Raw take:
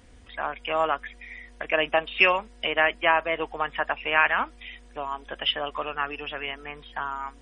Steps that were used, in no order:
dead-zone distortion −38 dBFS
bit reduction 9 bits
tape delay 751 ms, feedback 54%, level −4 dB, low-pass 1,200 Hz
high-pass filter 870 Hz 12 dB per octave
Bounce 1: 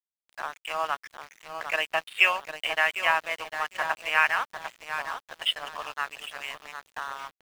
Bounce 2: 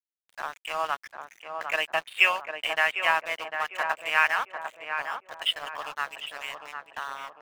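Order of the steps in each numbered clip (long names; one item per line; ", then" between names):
tape delay, then high-pass filter, then dead-zone distortion, then bit reduction
high-pass filter, then bit reduction, then dead-zone distortion, then tape delay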